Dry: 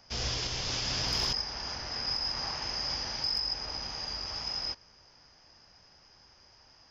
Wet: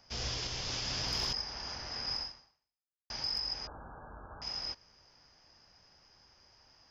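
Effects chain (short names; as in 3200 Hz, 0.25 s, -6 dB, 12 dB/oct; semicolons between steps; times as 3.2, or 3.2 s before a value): 2.21–3.1 fade out exponential; 3.67–4.42 brick-wall FIR low-pass 1700 Hz; gain -4 dB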